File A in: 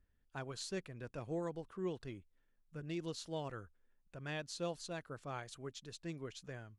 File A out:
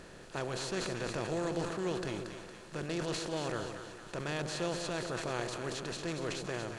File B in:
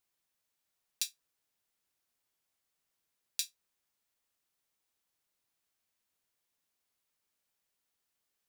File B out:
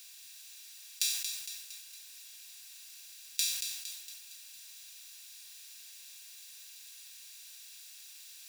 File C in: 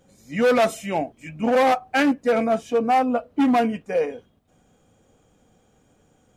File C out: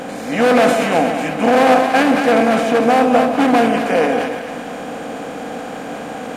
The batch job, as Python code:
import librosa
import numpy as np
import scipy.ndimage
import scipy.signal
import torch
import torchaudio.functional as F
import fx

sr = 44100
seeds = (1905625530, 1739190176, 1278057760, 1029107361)

y = fx.bin_compress(x, sr, power=0.4)
y = fx.echo_split(y, sr, split_hz=850.0, low_ms=137, high_ms=230, feedback_pct=52, wet_db=-7)
y = fx.sustainer(y, sr, db_per_s=54.0)
y = y * 10.0 ** (1.0 / 20.0)